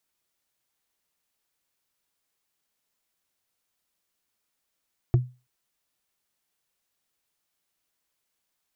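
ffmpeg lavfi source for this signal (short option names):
-f lavfi -i "aevalsrc='0.237*pow(10,-3*t/0.29)*sin(2*PI*125*t)+0.0891*pow(10,-3*t/0.086)*sin(2*PI*344.6*t)+0.0335*pow(10,-3*t/0.038)*sin(2*PI*675.5*t)+0.0126*pow(10,-3*t/0.021)*sin(2*PI*1116.6*t)+0.00473*pow(10,-3*t/0.013)*sin(2*PI*1667.5*t)':d=0.33:s=44100"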